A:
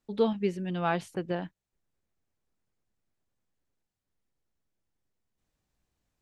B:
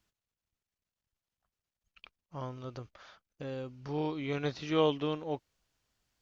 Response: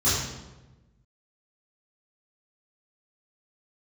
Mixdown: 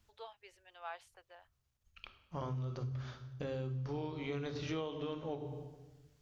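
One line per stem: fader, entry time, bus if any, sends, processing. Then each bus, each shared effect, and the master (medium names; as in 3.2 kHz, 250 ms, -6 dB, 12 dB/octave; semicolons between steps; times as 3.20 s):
-14.5 dB, 0.00 s, no send, inverse Chebyshev high-pass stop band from 190 Hz, stop band 60 dB; auto duck -13 dB, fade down 0.95 s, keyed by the second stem
+2.5 dB, 0.00 s, send -22 dB, hum notches 50/100/150/200/250/300 Hz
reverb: on, RT60 1.1 s, pre-delay 3 ms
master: bass shelf 110 Hz +9.5 dB; compression 12:1, threshold -36 dBFS, peak gain reduction 17.5 dB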